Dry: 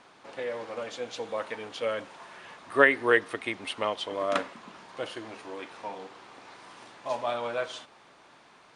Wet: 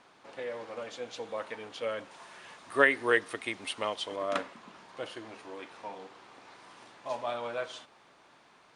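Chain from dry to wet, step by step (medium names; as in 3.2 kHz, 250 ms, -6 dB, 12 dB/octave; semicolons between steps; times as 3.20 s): 2.11–4.16 s: treble shelf 4.6 kHz +8.5 dB; trim -4 dB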